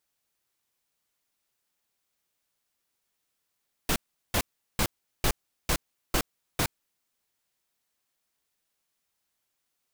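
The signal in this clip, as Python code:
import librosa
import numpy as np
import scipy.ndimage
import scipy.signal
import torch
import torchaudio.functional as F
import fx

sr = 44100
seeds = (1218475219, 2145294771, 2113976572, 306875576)

y = fx.noise_burst(sr, seeds[0], colour='pink', on_s=0.07, off_s=0.38, bursts=7, level_db=-24.5)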